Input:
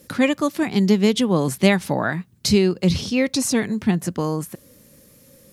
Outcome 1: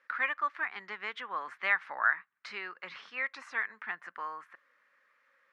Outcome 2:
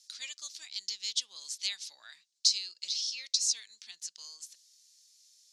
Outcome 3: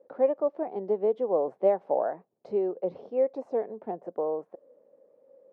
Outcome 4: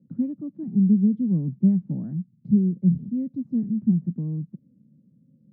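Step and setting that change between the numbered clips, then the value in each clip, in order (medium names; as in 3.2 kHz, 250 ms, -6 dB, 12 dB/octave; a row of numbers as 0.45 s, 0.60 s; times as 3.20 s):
Butterworth band-pass, frequency: 1.5 kHz, 5.3 kHz, 590 Hz, 180 Hz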